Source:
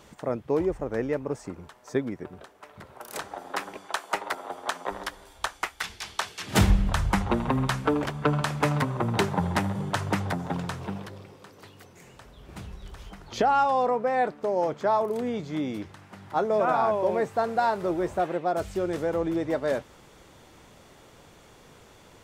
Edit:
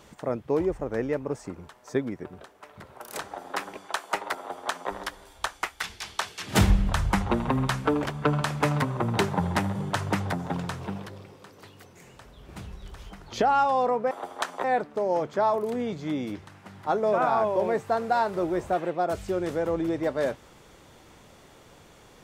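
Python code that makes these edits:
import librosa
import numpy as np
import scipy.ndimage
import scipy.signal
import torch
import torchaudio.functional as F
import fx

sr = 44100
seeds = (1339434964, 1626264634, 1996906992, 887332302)

y = fx.edit(x, sr, fx.duplicate(start_s=4.38, length_s=0.53, to_s=14.11), tone=tone)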